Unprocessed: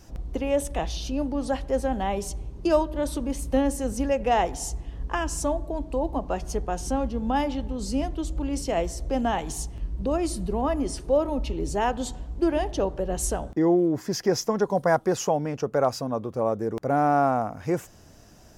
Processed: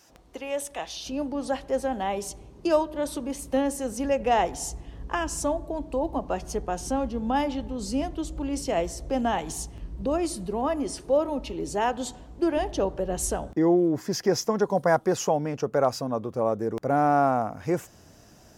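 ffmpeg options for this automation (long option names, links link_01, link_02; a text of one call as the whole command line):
ffmpeg -i in.wav -af "asetnsamples=nb_out_samples=441:pad=0,asendcmd='1.06 highpass f 250;4.04 highpass f 93;10.25 highpass f 200;12.57 highpass f 69',highpass=frequency=970:poles=1" out.wav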